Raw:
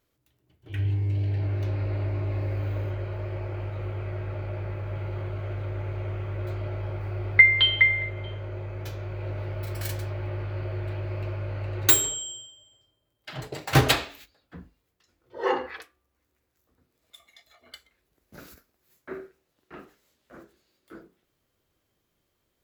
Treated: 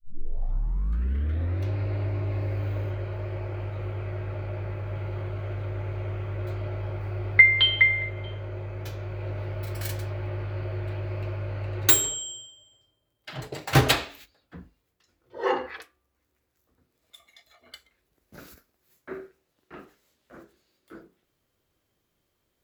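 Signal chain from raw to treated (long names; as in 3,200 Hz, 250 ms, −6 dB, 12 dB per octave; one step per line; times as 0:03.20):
turntable start at the beginning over 1.69 s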